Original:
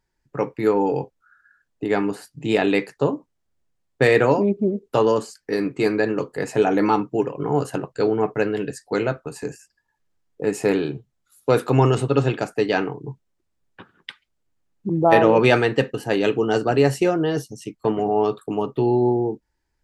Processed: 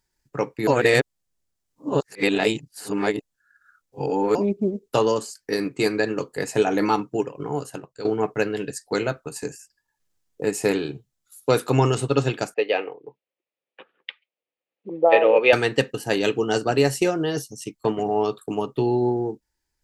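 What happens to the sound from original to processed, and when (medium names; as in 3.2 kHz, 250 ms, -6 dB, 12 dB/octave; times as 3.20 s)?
0.67–4.35 s: reverse
7.05–8.05 s: fade out, to -12.5 dB
12.54–15.53 s: cabinet simulation 480–3100 Hz, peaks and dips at 510 Hz +10 dB, 1 kHz -5 dB, 1.5 kHz -8 dB, 2.5 kHz +4 dB
whole clip: tone controls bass 0 dB, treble +3 dB; transient shaper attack +2 dB, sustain -3 dB; treble shelf 3.1 kHz +8.5 dB; trim -3 dB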